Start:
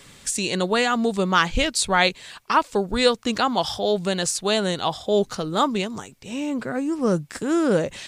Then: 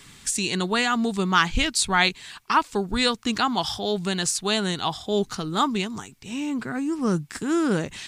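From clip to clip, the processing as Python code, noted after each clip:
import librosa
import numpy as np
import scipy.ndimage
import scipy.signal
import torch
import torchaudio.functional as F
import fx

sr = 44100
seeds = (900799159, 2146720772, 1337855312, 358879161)

y = fx.peak_eq(x, sr, hz=550.0, db=-12.5, octaves=0.52)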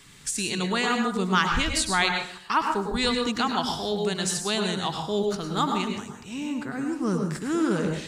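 y = fx.rev_plate(x, sr, seeds[0], rt60_s=0.55, hf_ratio=0.55, predelay_ms=90, drr_db=3.0)
y = y * librosa.db_to_amplitude(-3.5)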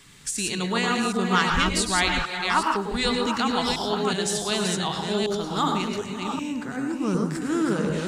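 y = fx.reverse_delay(x, sr, ms=376, wet_db=-3.5)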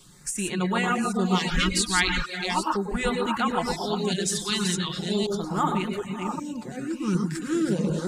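y = fx.dereverb_blind(x, sr, rt60_s=0.52)
y = y + 0.5 * np.pad(y, (int(5.6 * sr / 1000.0), 0))[:len(y)]
y = fx.filter_lfo_notch(y, sr, shape='sine', hz=0.38, low_hz=600.0, high_hz=5400.0, q=0.76)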